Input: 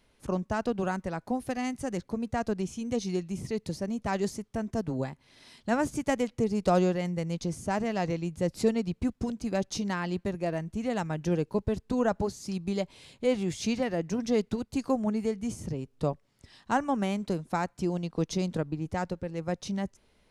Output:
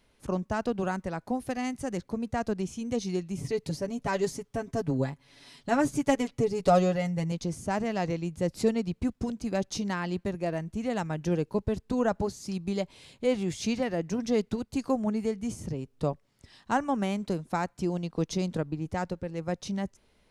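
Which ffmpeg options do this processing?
ffmpeg -i in.wav -filter_complex "[0:a]asettb=1/sr,asplit=3[link_01][link_02][link_03];[link_01]atrim=end=3.374[link_04];[link_02]atrim=start=3.37:end=7.32,asetpts=PTS-STARTPTS,afade=type=in:duration=0.004:curve=qsin,afade=type=out:start_time=3.946:duration=0.004:curve=qsin,aecho=1:1:7.1:0.69,atrim=end_sample=174195[link_05];[link_03]atrim=start=7.316[link_06];[link_04][link_05]acrossfade=duration=0.004:curve1=hsin:curve2=qsin[link_07];[link_07][link_06]acrossfade=duration=0.004:curve1=qsin:curve2=hsin" out.wav

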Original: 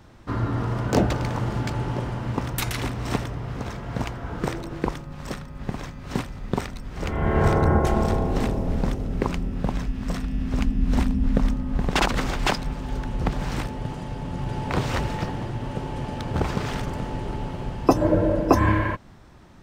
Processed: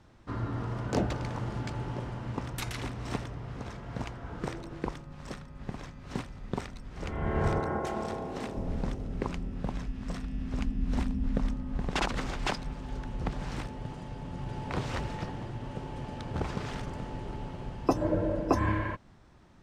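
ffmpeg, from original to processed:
ffmpeg -i in.wav -filter_complex "[0:a]asettb=1/sr,asplit=3[link_01][link_02][link_03];[link_01]atrim=end=7.604[link_04];[link_02]atrim=start=7.6:end=8.55,asetpts=PTS-STARTPTS,afade=type=in:duration=0.004:curve=qsin,afade=type=out:start_time=0.946:duration=0.004:curve=qsin,highpass=frequency=300:poles=1[link_05];[link_03]atrim=start=8.546[link_06];[link_04][link_05]acrossfade=duration=0.004:curve1=hsin:curve2=qsin[link_07];[link_07][link_06]acrossfade=duration=0.004:curve1=qsin:curve2=hsin,lowpass=10000,volume=-8.5dB" out.wav

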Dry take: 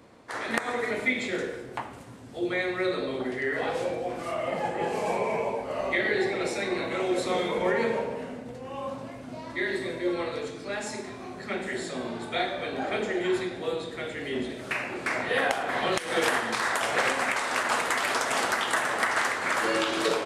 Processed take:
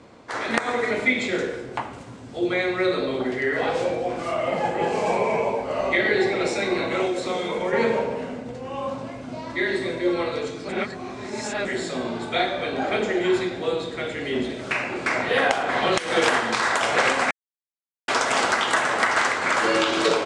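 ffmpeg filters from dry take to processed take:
ffmpeg -i in.wav -filter_complex "[0:a]asettb=1/sr,asplit=3[link_01][link_02][link_03];[link_01]atrim=end=7.064[link_04];[link_02]atrim=start=7.06:end=7.73,asetpts=PTS-STARTPTS,afade=type=in:duration=0.004:curve=qsin,afade=type=out:start_time=0.666:duration=0.004:curve=qsin,acrossover=split=120|5200[link_05][link_06][link_07];[link_05]acompressor=threshold=-58dB:ratio=4[link_08];[link_06]acompressor=threshold=-29dB:ratio=4[link_09];[link_07]acompressor=threshold=-45dB:ratio=4[link_10];[link_08][link_09][link_10]amix=inputs=3:normalize=0[link_11];[link_03]atrim=start=7.726[link_12];[link_04][link_11]acrossfade=duration=0.004:curve1=hsin:curve2=qsin[link_13];[link_13][link_12]acrossfade=duration=0.004:curve1=qsin:curve2=hsin,asplit=5[link_14][link_15][link_16][link_17][link_18];[link_14]atrim=end=10.692[link_19];[link_15]atrim=start=10.688:end=11.652,asetpts=PTS-STARTPTS,areverse[link_20];[link_16]atrim=start=11.648:end=17.31,asetpts=PTS-STARTPTS,afade=type=out:start_time=5.658:duration=0.004:curve=hsin[link_21];[link_17]atrim=start=17.31:end=18.08,asetpts=PTS-STARTPTS,volume=0[link_22];[link_18]atrim=start=18.08,asetpts=PTS-STARTPTS,afade=type=in:duration=0.004:curve=hsin[link_23];[link_19][link_20]acrossfade=duration=0.004:curve1=hsin:curve2=hsin[link_24];[link_21][link_22][link_23]concat=n=3:v=0:a=1[link_25];[link_24][link_25]acrossfade=duration=0.004:curve1=hsin:curve2=hsin,lowpass=frequency=8200:width=0.5412,lowpass=frequency=8200:width=1.3066,bandreject=frequency=1800:width=21,volume=5.5dB" out.wav

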